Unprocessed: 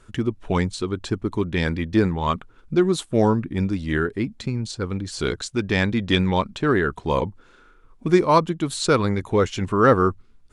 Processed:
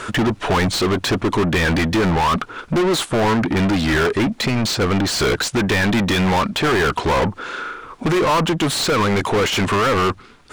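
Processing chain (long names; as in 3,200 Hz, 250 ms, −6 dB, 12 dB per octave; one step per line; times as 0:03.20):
brickwall limiter −13 dBFS, peak gain reduction 9 dB
speech leveller 2 s
mid-hump overdrive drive 35 dB, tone 3,500 Hz, clips at −10.5 dBFS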